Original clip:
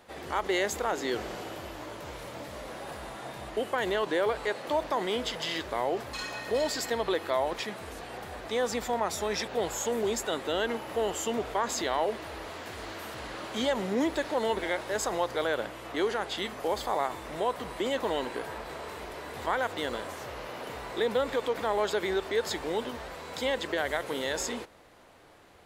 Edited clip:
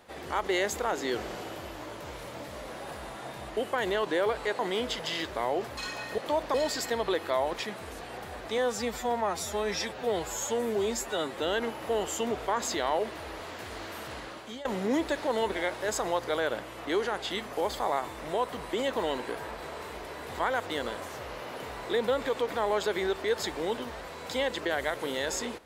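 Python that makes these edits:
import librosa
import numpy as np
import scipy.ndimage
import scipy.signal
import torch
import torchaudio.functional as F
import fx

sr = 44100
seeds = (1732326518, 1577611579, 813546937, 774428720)

y = fx.edit(x, sr, fx.move(start_s=4.59, length_s=0.36, to_s=6.54),
    fx.stretch_span(start_s=8.58, length_s=1.86, factor=1.5),
    fx.fade_out_to(start_s=13.2, length_s=0.52, floor_db=-19.0), tone=tone)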